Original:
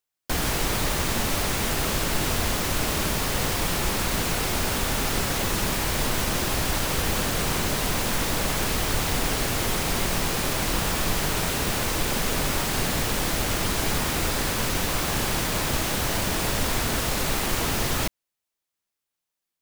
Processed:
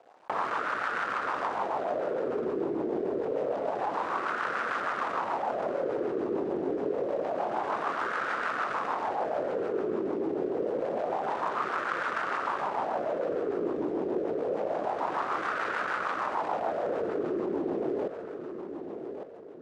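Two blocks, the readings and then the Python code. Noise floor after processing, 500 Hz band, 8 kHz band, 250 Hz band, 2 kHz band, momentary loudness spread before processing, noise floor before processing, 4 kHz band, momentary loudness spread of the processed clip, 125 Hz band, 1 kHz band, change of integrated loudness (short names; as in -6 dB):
-40 dBFS, +1.5 dB, under -30 dB, -5.0 dB, -6.5 dB, 0 LU, -85 dBFS, -22.0 dB, 1 LU, -21.5 dB, 0.0 dB, -6.5 dB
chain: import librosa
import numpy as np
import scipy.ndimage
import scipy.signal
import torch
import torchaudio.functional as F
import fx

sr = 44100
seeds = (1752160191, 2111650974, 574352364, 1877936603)

p1 = scipy.signal.medfilt(x, 41)
p2 = fx.fold_sine(p1, sr, drive_db=18, ceiling_db=-15.0)
p3 = p1 + (p2 * librosa.db_to_amplitude(-8.0))
p4 = fx.wah_lfo(p3, sr, hz=0.27, low_hz=360.0, high_hz=1400.0, q=3.8)
p5 = fx.rider(p4, sr, range_db=10, speed_s=0.5)
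p6 = scipy.signal.savgol_filter(p5, 9, 4, mode='constant')
p7 = fx.high_shelf(p6, sr, hz=5900.0, db=6.0)
p8 = p7 + fx.echo_feedback(p7, sr, ms=1155, feedback_pct=18, wet_db=-16.5, dry=0)
p9 = fx.rotary(p8, sr, hz=6.7)
p10 = fx.highpass(p9, sr, hz=280.0, slope=6)
p11 = fx.env_flatten(p10, sr, amount_pct=50)
y = p11 * librosa.db_to_amplitude(5.0)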